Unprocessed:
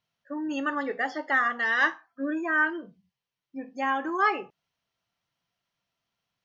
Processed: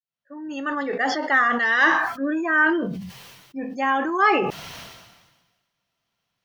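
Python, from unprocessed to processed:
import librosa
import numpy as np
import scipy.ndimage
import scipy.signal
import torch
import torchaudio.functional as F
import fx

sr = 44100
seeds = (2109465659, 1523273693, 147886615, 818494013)

y = fx.fade_in_head(x, sr, length_s=1.08)
y = fx.sustainer(y, sr, db_per_s=44.0)
y = F.gain(torch.from_numpy(y), 5.0).numpy()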